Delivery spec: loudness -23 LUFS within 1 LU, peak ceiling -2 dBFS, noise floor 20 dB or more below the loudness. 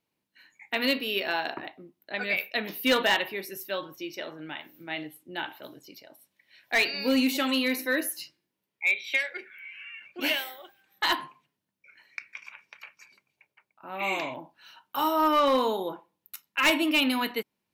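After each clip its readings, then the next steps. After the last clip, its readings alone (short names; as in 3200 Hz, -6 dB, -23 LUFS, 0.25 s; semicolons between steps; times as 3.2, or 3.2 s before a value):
clipped 0.3%; flat tops at -16.5 dBFS; loudness -27.5 LUFS; peak -16.5 dBFS; loudness target -23.0 LUFS
-> clip repair -16.5 dBFS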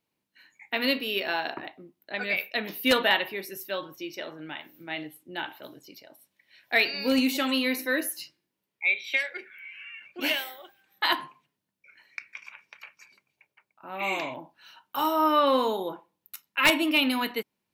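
clipped 0.0%; loudness -27.0 LUFS; peak -7.5 dBFS; loudness target -23.0 LUFS
-> gain +4 dB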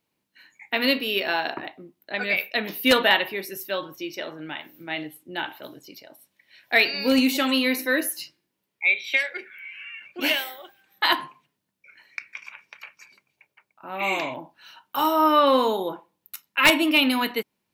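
loudness -23.0 LUFS; peak -3.5 dBFS; noise floor -79 dBFS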